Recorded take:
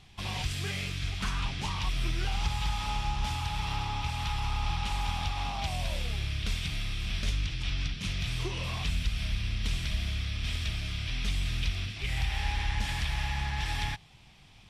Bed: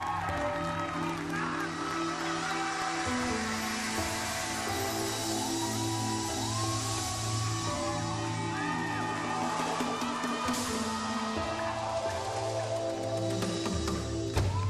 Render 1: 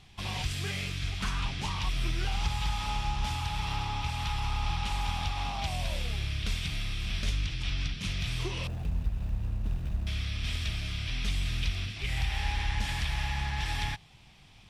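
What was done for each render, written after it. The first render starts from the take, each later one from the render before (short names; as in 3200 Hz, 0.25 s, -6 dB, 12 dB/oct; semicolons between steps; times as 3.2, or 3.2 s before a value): 8.67–10.07 median filter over 41 samples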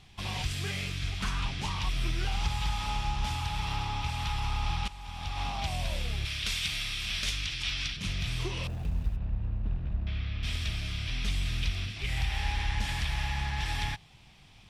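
4.88–5.41 fade in quadratic, from -14.5 dB; 6.25–7.97 tilt shelf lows -7 dB, about 930 Hz; 9.16–10.43 air absorption 280 m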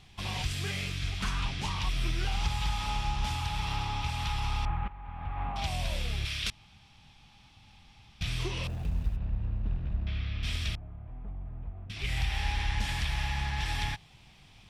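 4.65–5.56 LPF 1900 Hz 24 dB/oct; 6.5–8.21 room tone; 10.75–11.9 ladder low-pass 970 Hz, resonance 45%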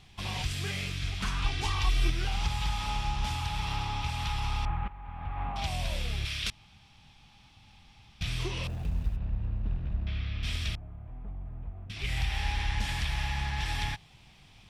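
1.44–2.1 comb 2.6 ms, depth 94%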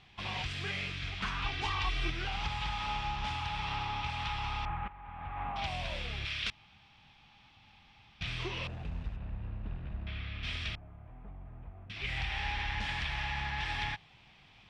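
LPF 2700 Hz 12 dB/oct; tilt +2 dB/oct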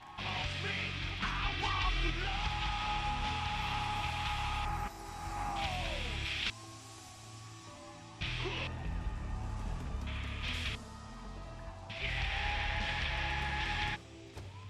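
add bed -18.5 dB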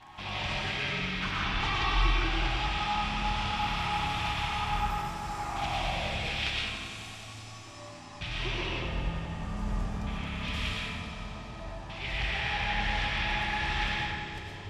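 on a send: analogue delay 92 ms, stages 4096, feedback 81%, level -10.5 dB; on the sum: digital reverb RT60 1.4 s, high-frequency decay 0.5×, pre-delay 75 ms, DRR -3.5 dB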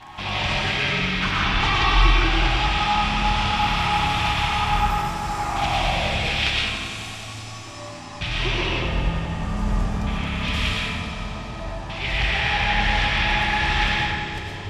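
gain +9.5 dB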